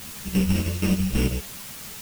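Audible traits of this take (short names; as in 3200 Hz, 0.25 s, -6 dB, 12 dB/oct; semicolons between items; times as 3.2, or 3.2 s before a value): a buzz of ramps at a fixed pitch in blocks of 16 samples; chopped level 6.1 Hz, depth 60%, duty 70%; a quantiser's noise floor 6-bit, dither triangular; a shimmering, thickened sound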